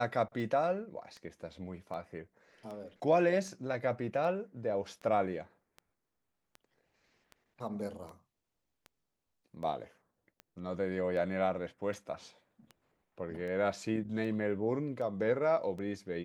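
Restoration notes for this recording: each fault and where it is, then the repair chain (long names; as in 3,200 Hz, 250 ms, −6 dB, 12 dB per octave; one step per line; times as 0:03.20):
scratch tick 78 rpm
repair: click removal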